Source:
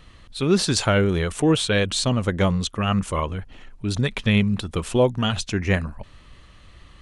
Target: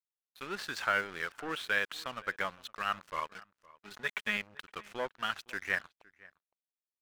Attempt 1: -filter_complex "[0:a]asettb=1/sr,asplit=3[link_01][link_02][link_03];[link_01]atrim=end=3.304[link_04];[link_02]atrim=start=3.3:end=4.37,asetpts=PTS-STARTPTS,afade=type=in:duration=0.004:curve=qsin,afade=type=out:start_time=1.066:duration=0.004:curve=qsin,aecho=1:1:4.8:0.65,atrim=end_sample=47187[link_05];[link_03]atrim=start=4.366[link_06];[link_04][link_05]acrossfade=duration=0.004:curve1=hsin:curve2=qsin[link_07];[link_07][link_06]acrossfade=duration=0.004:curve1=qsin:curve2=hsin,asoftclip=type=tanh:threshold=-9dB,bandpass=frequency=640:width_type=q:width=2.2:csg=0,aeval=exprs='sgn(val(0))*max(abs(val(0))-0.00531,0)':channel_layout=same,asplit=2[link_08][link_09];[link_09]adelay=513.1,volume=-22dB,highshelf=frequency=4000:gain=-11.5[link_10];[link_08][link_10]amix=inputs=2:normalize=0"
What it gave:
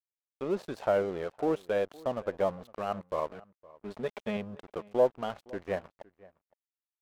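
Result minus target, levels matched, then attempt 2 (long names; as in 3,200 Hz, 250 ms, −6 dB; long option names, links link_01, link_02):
2,000 Hz band −14.5 dB
-filter_complex "[0:a]asettb=1/sr,asplit=3[link_01][link_02][link_03];[link_01]atrim=end=3.304[link_04];[link_02]atrim=start=3.3:end=4.37,asetpts=PTS-STARTPTS,afade=type=in:duration=0.004:curve=qsin,afade=type=out:start_time=1.066:duration=0.004:curve=qsin,aecho=1:1:4.8:0.65,atrim=end_sample=47187[link_05];[link_03]atrim=start=4.366[link_06];[link_04][link_05]acrossfade=duration=0.004:curve1=hsin:curve2=qsin[link_07];[link_07][link_06]acrossfade=duration=0.004:curve1=qsin:curve2=hsin,asoftclip=type=tanh:threshold=-9dB,bandpass=frequency=1600:width_type=q:width=2.2:csg=0,aeval=exprs='sgn(val(0))*max(abs(val(0))-0.00531,0)':channel_layout=same,asplit=2[link_08][link_09];[link_09]adelay=513.1,volume=-22dB,highshelf=frequency=4000:gain=-11.5[link_10];[link_08][link_10]amix=inputs=2:normalize=0"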